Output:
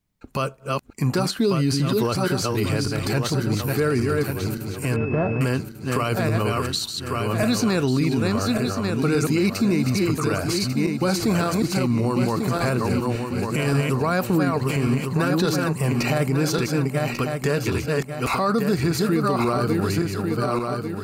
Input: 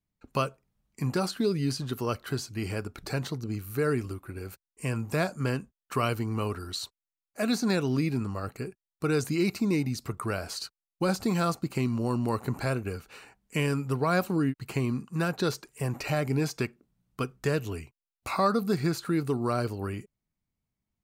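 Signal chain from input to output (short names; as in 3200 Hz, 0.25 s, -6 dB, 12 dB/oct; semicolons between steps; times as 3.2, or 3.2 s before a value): regenerating reverse delay 0.572 s, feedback 59%, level -4.5 dB; limiter -21.5 dBFS, peak gain reduction 9.5 dB; 4.96–5.41 pulse-width modulation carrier 2600 Hz; gain +9 dB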